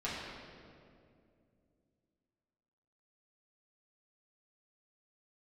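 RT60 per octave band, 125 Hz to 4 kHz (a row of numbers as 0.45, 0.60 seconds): 3.3, 3.4, 2.8, 2.1, 1.8, 1.5 seconds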